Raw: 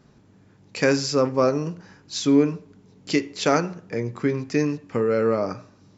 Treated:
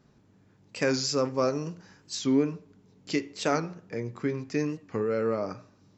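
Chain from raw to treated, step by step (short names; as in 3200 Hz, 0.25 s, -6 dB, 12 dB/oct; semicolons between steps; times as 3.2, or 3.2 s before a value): 0.94–2.16 high shelf 4400 Hz +8 dB; record warp 45 rpm, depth 100 cents; gain -6.5 dB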